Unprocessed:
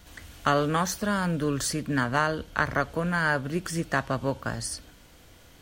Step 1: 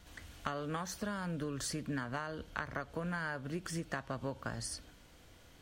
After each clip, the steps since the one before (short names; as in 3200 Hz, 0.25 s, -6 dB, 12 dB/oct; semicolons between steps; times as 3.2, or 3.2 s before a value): high shelf 11000 Hz -6.5 dB; compressor 10:1, threshold -28 dBFS, peak gain reduction 11.5 dB; gain -6 dB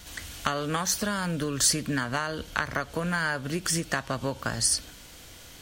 high shelf 2700 Hz +11 dB; gain +8.5 dB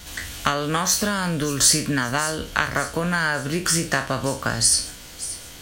spectral trails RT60 0.34 s; thin delay 0.578 s, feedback 50%, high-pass 5500 Hz, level -12 dB; gain +5 dB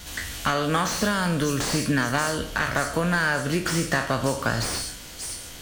on a send at -13 dB: reverb RT60 0.60 s, pre-delay 50 ms; on the sum: slew limiter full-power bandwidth 220 Hz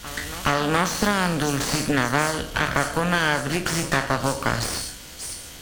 added harmonics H 4 -10 dB, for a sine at -8 dBFS; reverse echo 0.42 s -16.5 dB